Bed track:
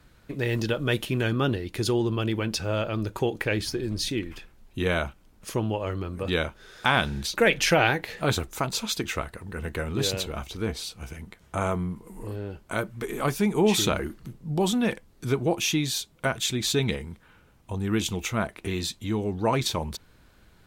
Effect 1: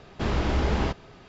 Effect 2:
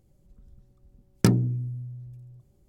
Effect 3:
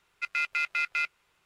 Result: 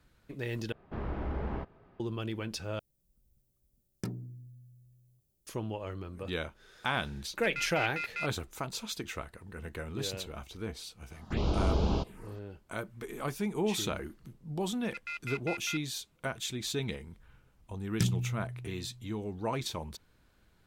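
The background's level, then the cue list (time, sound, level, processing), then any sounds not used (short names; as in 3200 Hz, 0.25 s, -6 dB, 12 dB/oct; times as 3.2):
bed track -9.5 dB
0.72 replace with 1 -10.5 dB + LPF 1600 Hz
2.79 replace with 2 -18 dB + added noise violet -62 dBFS
7.21 add 3 -8 dB
11.11 add 1 -3.5 dB + envelope phaser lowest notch 360 Hz, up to 1900 Hz, full sweep at -21.5 dBFS
14.72 add 3 -10.5 dB
16.76 add 2 -7 dB + band shelf 540 Hz -12.5 dB 2.7 oct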